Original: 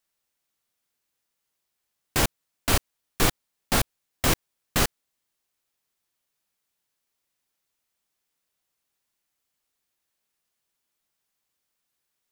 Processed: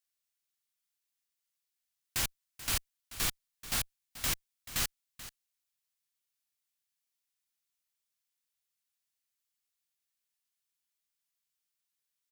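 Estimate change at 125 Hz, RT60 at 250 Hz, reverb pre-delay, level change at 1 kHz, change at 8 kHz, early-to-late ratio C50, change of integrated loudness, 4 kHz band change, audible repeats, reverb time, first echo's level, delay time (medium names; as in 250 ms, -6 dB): -14.5 dB, no reverb, no reverb, -14.5 dB, -6.0 dB, no reverb, -8.0 dB, -7.0 dB, 1, no reverb, -15.0 dB, 434 ms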